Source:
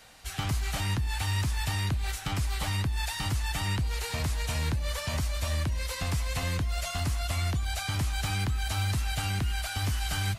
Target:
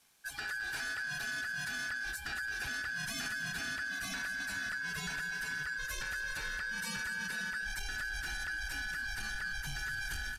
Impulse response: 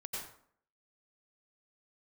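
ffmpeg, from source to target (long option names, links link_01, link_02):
-filter_complex "[0:a]afftdn=noise_reduction=16:noise_floor=-37,aeval=exprs='val(0)*sin(2*PI*1600*n/s)':channel_layout=same,asubboost=boost=6.5:cutoff=180,acompressor=threshold=-34dB:ratio=6,asoftclip=type=tanh:threshold=-33.5dB,aemphasis=mode=production:type=50kf,asplit=2[link_01][link_02];[link_02]aecho=0:1:219:0.316[link_03];[link_01][link_03]amix=inputs=2:normalize=0,aresample=32000,aresample=44100"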